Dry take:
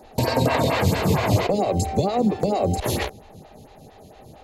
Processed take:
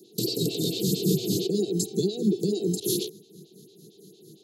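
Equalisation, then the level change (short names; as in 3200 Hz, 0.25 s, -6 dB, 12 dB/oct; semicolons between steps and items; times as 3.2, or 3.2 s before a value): HPF 180 Hz 24 dB/oct; elliptic band-stop 380–3500 Hz, stop band 80 dB; fixed phaser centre 380 Hz, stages 8; +4.0 dB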